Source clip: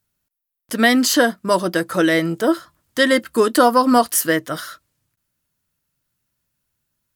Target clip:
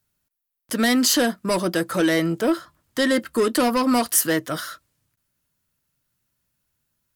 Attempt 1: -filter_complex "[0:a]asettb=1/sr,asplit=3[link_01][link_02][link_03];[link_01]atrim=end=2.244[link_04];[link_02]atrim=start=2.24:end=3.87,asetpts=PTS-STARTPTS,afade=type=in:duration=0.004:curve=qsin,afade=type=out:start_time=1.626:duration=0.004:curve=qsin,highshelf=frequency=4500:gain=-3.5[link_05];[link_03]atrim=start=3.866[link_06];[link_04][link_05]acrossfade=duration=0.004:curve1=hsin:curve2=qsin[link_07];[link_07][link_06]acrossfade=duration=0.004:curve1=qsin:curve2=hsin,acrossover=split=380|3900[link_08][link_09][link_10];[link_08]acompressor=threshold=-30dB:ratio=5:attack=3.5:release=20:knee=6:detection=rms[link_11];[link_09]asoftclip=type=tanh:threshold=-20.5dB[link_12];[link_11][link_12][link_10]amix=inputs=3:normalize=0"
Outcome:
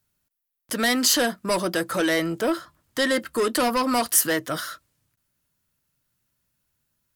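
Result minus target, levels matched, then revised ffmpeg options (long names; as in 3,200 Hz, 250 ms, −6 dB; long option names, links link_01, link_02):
downward compressor: peak gain reduction +9 dB
-filter_complex "[0:a]asettb=1/sr,asplit=3[link_01][link_02][link_03];[link_01]atrim=end=2.244[link_04];[link_02]atrim=start=2.24:end=3.87,asetpts=PTS-STARTPTS,afade=type=in:duration=0.004:curve=qsin,afade=type=out:start_time=1.626:duration=0.004:curve=qsin,highshelf=frequency=4500:gain=-3.5[link_05];[link_03]atrim=start=3.866[link_06];[link_04][link_05]acrossfade=duration=0.004:curve1=hsin:curve2=qsin[link_07];[link_07][link_06]acrossfade=duration=0.004:curve1=qsin:curve2=hsin,acrossover=split=380|3900[link_08][link_09][link_10];[link_08]acompressor=threshold=-19dB:ratio=5:attack=3.5:release=20:knee=6:detection=rms[link_11];[link_09]asoftclip=type=tanh:threshold=-20.5dB[link_12];[link_11][link_12][link_10]amix=inputs=3:normalize=0"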